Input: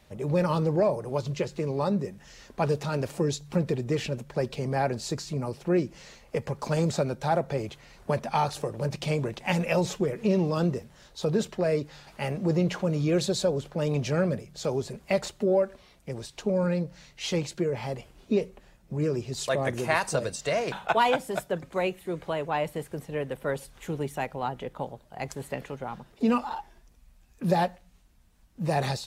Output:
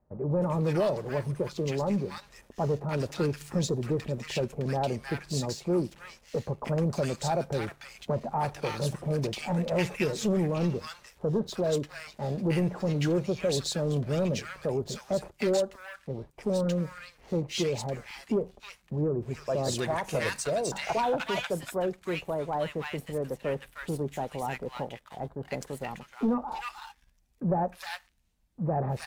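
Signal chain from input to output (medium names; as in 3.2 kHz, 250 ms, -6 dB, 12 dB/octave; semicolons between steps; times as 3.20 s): waveshaping leveller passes 2; bands offset in time lows, highs 310 ms, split 1.2 kHz; trim -7.5 dB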